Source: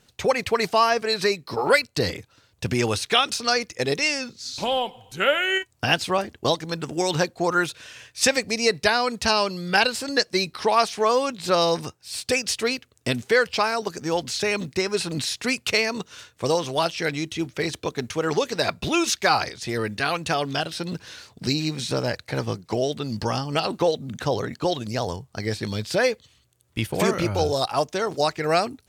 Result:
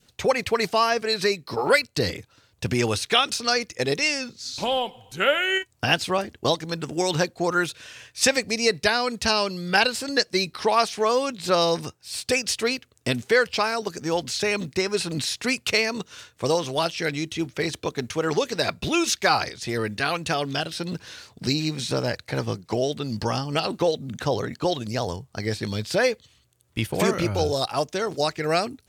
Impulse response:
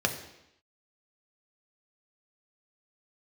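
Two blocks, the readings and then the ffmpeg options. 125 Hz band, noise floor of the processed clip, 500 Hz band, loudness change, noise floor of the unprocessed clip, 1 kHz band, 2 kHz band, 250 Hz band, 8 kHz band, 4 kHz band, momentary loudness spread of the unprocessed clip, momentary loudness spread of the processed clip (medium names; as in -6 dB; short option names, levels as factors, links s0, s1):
0.0 dB, -64 dBFS, -0.5 dB, -0.5 dB, -63 dBFS, -1.5 dB, -0.5 dB, 0.0 dB, 0.0 dB, 0.0 dB, 9 LU, 8 LU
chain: -af "adynamicequalizer=threshold=0.0141:dfrequency=910:dqfactor=1.2:tfrequency=910:tqfactor=1.2:attack=5:release=100:ratio=0.375:range=2:mode=cutabove:tftype=bell"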